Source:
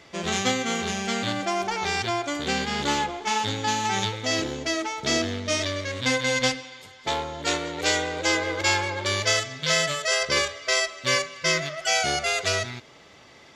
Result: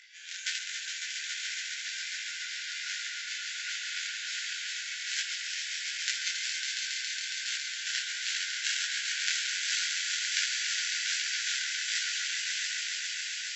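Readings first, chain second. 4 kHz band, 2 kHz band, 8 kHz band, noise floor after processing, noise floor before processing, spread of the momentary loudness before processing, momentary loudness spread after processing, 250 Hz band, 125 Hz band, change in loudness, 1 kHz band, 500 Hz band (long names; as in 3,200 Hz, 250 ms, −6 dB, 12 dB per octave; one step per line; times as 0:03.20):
−4.0 dB, −6.0 dB, −3.0 dB, −39 dBFS, −51 dBFS, 5 LU, 6 LU, below −40 dB, below −40 dB, −6.5 dB, −23.0 dB, below −40 dB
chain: feedback delay that plays each chunk backwards 103 ms, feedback 47%, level −2.5 dB
upward compression, threshold −37 dBFS
harmonic generator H 3 −9 dB, 7 −32 dB, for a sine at −6.5 dBFS
on a send: echo that builds up and dies away 138 ms, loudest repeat 5, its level −6.5 dB
on the sum: brick-wall band-pass 1,400–7,700 Hz
micro pitch shift up and down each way 46 cents
level +6.5 dB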